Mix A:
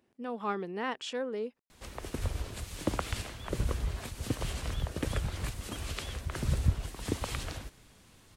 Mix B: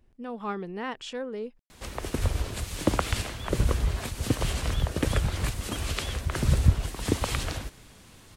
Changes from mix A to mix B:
speech: remove high-pass 210 Hz 12 dB/octave; background +7.0 dB

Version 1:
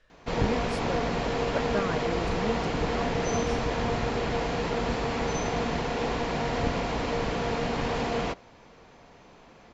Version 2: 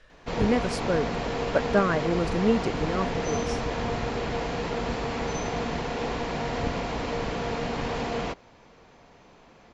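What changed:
speech +8.5 dB; reverb: off

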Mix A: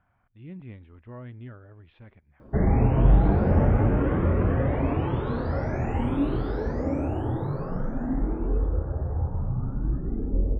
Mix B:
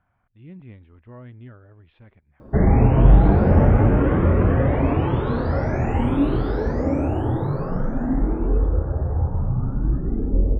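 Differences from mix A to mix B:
speech: send -6.5 dB; background +5.5 dB

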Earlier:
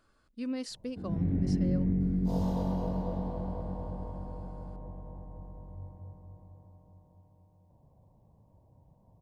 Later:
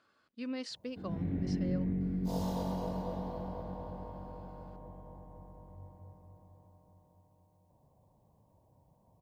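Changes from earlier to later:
speech: add band-pass 120–3900 Hz; master: add tilt EQ +2 dB/octave

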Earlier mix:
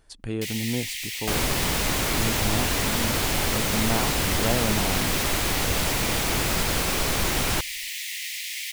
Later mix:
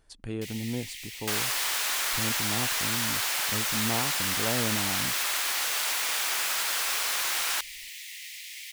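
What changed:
speech -4.5 dB; first sound -9.0 dB; second sound: add high-pass 1.2 kHz 12 dB/octave

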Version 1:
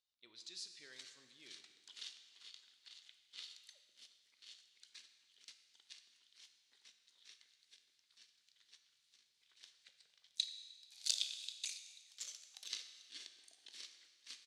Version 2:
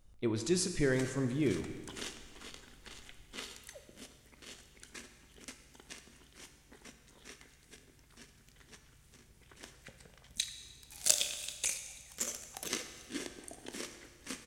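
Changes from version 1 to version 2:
speech +5.5 dB; master: remove band-pass filter 4.1 kHz, Q 3.1

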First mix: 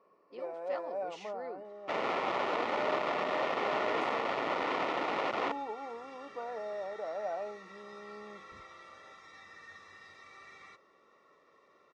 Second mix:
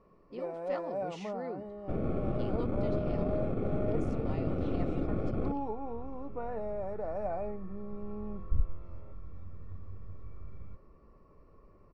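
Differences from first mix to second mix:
second sound: add boxcar filter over 46 samples; master: remove band-pass 460–7900 Hz

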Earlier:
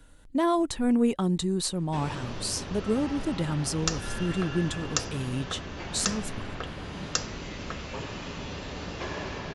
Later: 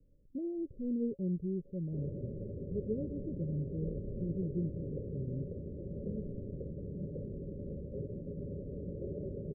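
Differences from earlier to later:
speech -6.5 dB; master: add rippled Chebyshev low-pass 580 Hz, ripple 6 dB

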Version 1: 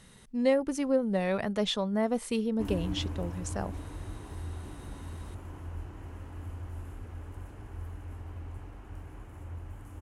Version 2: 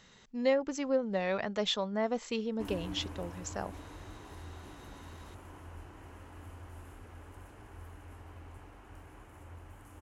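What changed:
speech: add brick-wall FIR low-pass 7.8 kHz; master: add bass shelf 290 Hz -10 dB

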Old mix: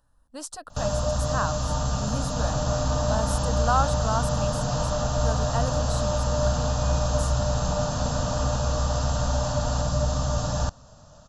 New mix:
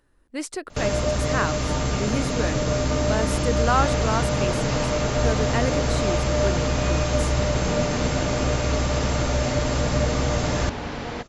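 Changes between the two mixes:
second sound: entry +1.40 s; master: remove static phaser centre 900 Hz, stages 4

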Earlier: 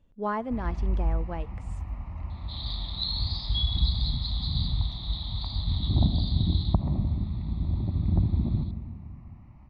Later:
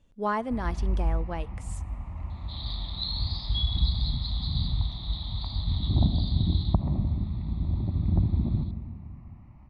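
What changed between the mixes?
speech: remove tape spacing loss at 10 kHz 23 dB; master: add treble shelf 6.2 kHz -6.5 dB

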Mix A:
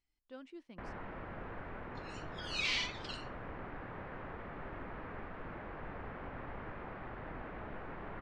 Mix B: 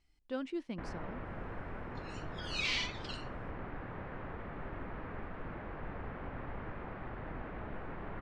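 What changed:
speech +10.5 dB; master: add bass shelf 280 Hz +4.5 dB

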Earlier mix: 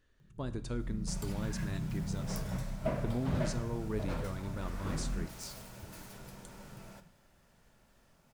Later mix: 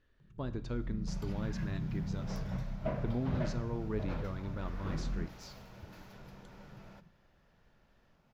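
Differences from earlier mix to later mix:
second sound: send off; master: add boxcar filter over 5 samples

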